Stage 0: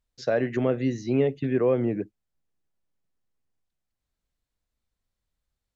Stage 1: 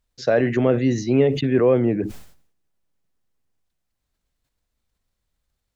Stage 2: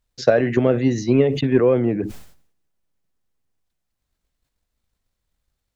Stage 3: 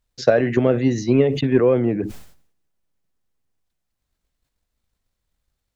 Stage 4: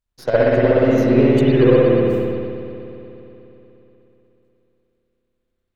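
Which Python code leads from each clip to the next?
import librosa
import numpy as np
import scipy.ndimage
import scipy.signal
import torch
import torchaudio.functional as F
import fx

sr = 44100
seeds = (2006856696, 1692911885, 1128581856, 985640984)

y1 = fx.sustainer(x, sr, db_per_s=91.0)
y1 = y1 * librosa.db_to_amplitude(5.5)
y2 = fx.transient(y1, sr, attack_db=7, sustain_db=2)
y2 = y2 * librosa.db_to_amplitude(-1.0)
y3 = y2
y4 = fx.tracing_dist(y3, sr, depth_ms=0.071)
y4 = fx.rev_spring(y4, sr, rt60_s=3.5, pass_ms=(60,), chirp_ms=60, drr_db=-9.0)
y4 = fx.upward_expand(y4, sr, threshold_db=-18.0, expansion=1.5)
y4 = y4 * librosa.db_to_amplitude(-4.0)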